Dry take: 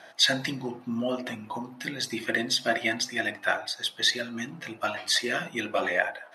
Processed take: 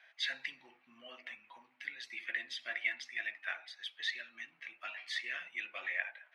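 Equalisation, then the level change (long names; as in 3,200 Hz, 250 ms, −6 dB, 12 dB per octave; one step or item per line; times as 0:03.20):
resonant band-pass 2,300 Hz, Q 3.7
−3.0 dB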